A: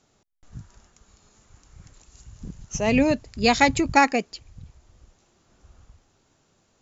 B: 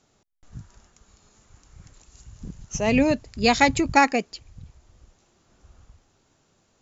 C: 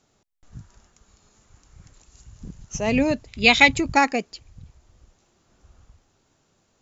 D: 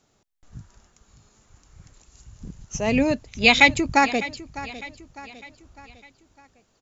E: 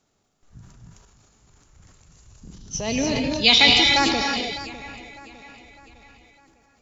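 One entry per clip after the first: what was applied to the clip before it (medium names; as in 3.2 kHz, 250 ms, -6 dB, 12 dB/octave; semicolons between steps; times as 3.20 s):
no audible change
time-frequency box 3.28–3.72 s, 2–4.1 kHz +11 dB; trim -1 dB
feedback delay 604 ms, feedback 47%, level -16.5 dB
time-frequency box 2.54–4.35 s, 2.9–6.2 kHz +11 dB; gated-style reverb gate 330 ms rising, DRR 1.5 dB; transient shaper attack -1 dB, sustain +8 dB; trim -4.5 dB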